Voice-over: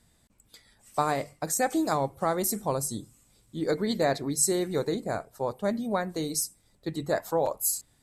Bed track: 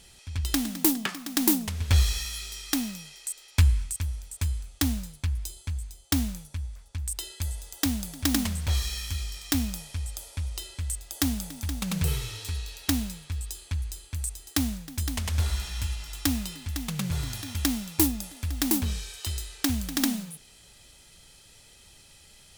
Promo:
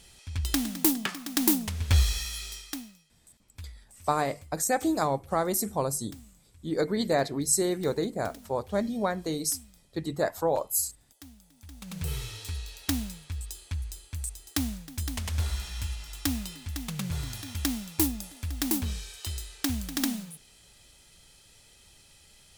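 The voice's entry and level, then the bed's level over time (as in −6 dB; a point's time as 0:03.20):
3.10 s, 0.0 dB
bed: 0:02.53 −1 dB
0:03.08 −23.5 dB
0:11.41 −23.5 dB
0:12.20 −3 dB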